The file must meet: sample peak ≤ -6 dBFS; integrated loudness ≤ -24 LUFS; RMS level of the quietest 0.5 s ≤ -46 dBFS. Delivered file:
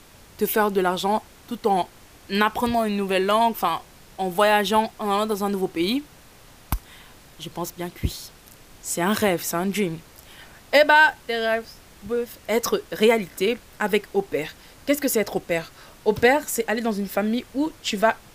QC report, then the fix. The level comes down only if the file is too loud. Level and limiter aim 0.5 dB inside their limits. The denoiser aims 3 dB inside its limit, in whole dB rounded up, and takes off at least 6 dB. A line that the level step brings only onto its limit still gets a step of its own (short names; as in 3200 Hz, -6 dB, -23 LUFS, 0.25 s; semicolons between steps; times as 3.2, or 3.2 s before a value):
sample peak -5.0 dBFS: fail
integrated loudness -23.0 LUFS: fail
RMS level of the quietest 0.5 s -49 dBFS: OK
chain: gain -1.5 dB